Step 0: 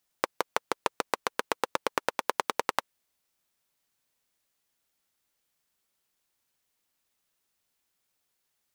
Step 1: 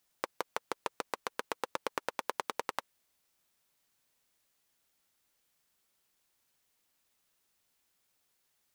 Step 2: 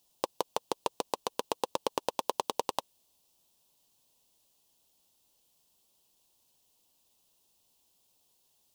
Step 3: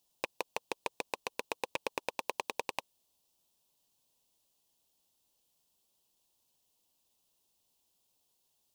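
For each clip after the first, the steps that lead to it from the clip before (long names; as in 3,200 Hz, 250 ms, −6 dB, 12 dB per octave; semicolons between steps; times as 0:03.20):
brickwall limiter −15.5 dBFS, peak gain reduction 10.5 dB; level +2 dB
flat-topped bell 1,700 Hz −14 dB 1.1 octaves; level +6 dB
loose part that buzzes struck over −44 dBFS, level −16 dBFS; level −5.5 dB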